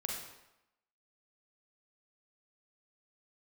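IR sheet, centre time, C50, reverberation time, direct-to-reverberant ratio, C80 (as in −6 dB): 54 ms, 1.5 dB, 0.90 s, −1.0 dB, 5.0 dB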